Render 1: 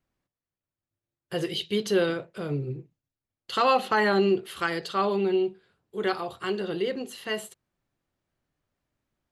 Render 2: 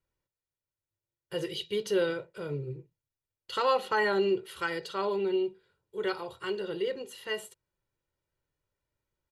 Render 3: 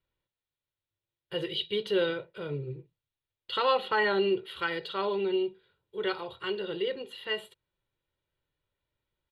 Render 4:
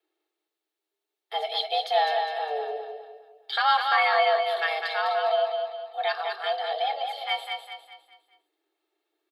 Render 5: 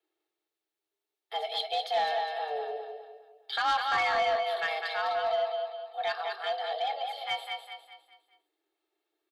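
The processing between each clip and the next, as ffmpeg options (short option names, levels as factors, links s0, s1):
-af "aecho=1:1:2.1:0.59,volume=0.501"
-af "highshelf=f=4700:t=q:w=3:g=-9"
-filter_complex "[0:a]afreqshift=300,asplit=2[s0][s1];[s1]aecho=0:1:203|406|609|812|1015:0.562|0.236|0.0992|0.0417|0.0175[s2];[s0][s2]amix=inputs=2:normalize=0,volume=1.5"
-af "asoftclip=type=tanh:threshold=0.15,volume=0.668"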